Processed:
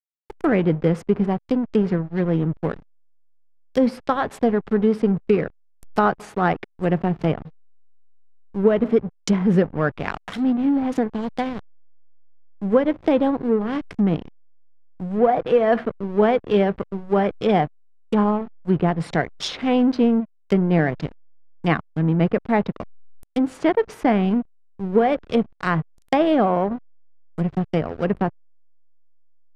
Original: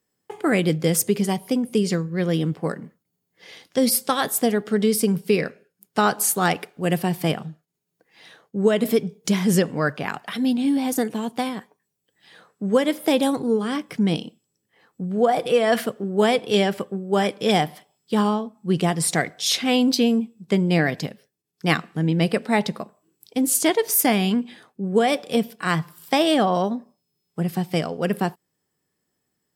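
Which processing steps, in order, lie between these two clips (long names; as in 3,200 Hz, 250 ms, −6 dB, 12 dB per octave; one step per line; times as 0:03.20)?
slack as between gear wheels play −25 dBFS
treble cut that deepens with the level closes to 1,700 Hz, closed at −19 dBFS
level +2 dB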